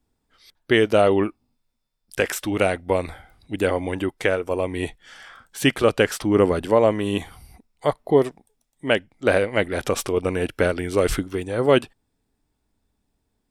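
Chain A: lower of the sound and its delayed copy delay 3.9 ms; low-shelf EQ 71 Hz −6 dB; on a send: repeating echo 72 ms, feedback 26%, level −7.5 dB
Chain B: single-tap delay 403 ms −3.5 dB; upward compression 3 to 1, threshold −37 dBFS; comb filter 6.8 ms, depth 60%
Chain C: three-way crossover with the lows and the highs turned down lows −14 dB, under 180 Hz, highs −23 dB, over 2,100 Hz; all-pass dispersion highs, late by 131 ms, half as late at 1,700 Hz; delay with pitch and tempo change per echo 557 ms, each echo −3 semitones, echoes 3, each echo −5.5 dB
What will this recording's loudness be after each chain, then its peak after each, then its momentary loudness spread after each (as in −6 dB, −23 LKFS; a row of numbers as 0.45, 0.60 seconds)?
−24.5, −19.5, −23.0 LKFS; −5.5, −1.0, −5.0 dBFS; 12, 10, 10 LU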